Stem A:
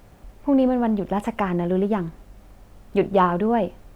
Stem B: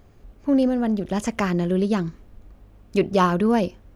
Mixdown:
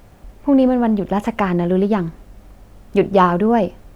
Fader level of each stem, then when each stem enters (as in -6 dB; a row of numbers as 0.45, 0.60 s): +3.0, -7.5 dB; 0.00, 0.00 s